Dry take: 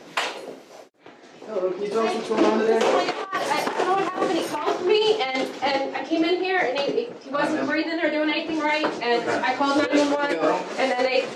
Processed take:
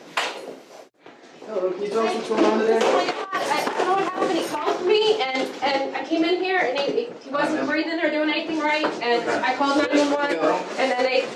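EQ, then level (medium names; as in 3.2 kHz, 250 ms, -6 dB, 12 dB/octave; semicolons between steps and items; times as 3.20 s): bass shelf 76 Hz -8 dB; hum notches 60/120 Hz; +1.0 dB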